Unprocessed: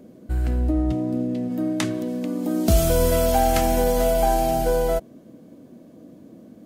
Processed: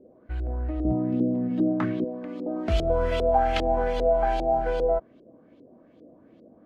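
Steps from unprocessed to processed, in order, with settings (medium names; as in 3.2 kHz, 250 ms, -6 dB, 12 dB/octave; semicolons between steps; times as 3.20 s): peaking EQ 180 Hz -11.5 dB 1.5 oct, from 0.85 s +6 dB, from 2.04 s -7.5 dB; LFO low-pass saw up 2.5 Hz 380–3800 Hz; trim -5 dB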